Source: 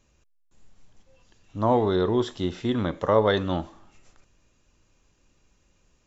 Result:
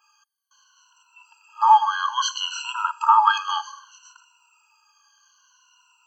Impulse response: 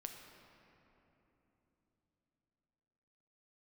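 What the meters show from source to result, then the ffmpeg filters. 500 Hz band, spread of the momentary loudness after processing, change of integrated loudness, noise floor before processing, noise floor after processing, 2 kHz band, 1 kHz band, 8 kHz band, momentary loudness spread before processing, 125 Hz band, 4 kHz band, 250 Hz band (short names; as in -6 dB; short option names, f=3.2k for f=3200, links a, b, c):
under -40 dB, 11 LU, +4.5 dB, -66 dBFS, -64 dBFS, +8.5 dB, +12.5 dB, n/a, 10 LU, under -40 dB, +9.0 dB, under -40 dB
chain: -af "afftfilt=real='re*pow(10,23/40*sin(2*PI*(2*log(max(b,1)*sr/1024/100)/log(2)-(-0.62)*(pts-256)/sr)))':imag='im*pow(10,23/40*sin(2*PI*(2*log(max(b,1)*sr/1024/100)/log(2)-(-0.62)*(pts-256)/sr)))':win_size=1024:overlap=0.75,adynamicequalizer=threshold=0.00501:dfrequency=6900:dqfactor=0.73:tfrequency=6900:tqfactor=0.73:attack=5:release=100:ratio=0.375:range=3.5:mode=boostabove:tftype=bell,afftfilt=real='re*eq(mod(floor(b*sr/1024/820),2),1)':imag='im*eq(mod(floor(b*sr/1024/820),2),1)':win_size=1024:overlap=0.75,volume=8.5dB"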